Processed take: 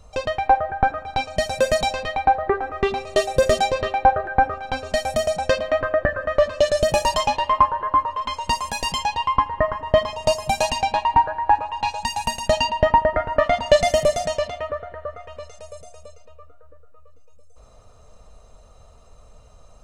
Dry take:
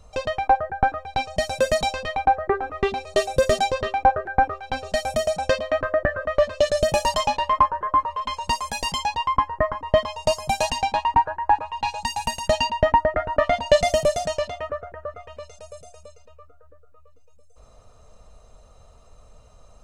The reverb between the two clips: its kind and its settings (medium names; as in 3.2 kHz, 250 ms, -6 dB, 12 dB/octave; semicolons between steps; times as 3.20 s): spring tank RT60 1.9 s, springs 38 ms, chirp 55 ms, DRR 16 dB; trim +1.5 dB